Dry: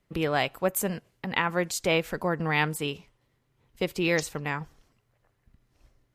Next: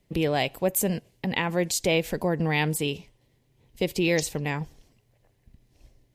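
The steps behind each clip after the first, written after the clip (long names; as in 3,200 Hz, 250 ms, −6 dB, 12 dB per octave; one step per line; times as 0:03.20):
parametric band 1,300 Hz −14 dB 0.75 octaves
in parallel at 0 dB: brickwall limiter −24 dBFS, peak gain reduction 11 dB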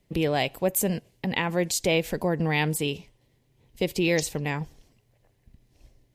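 no processing that can be heard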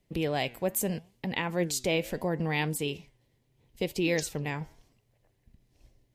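flanger 0.75 Hz, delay 2.5 ms, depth 7.5 ms, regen +90%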